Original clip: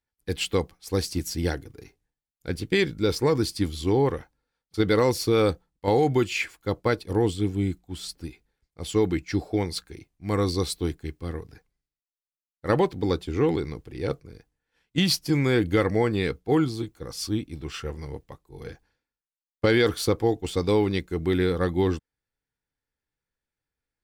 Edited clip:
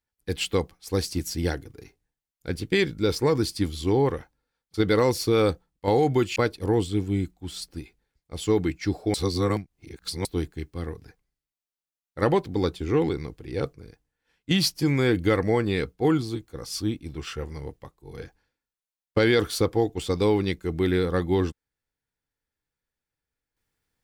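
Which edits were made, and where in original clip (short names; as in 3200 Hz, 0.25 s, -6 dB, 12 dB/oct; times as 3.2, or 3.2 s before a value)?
6.36–6.83 cut
9.61–10.72 reverse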